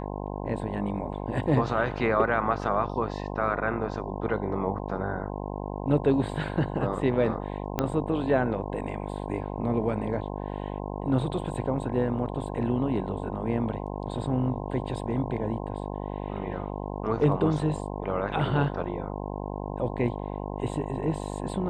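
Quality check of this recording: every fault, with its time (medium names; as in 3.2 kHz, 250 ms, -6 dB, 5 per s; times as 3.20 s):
buzz 50 Hz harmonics 21 -34 dBFS
7.79 s: pop -11 dBFS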